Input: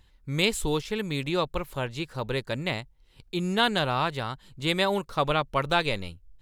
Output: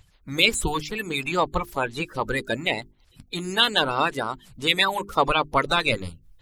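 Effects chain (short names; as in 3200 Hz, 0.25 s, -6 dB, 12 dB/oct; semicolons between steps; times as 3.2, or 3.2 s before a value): bin magnitudes rounded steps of 30 dB; notches 50/100/150/200/250/300/350/400 Hz; harmonic-percussive split percussive +9 dB; gain -2 dB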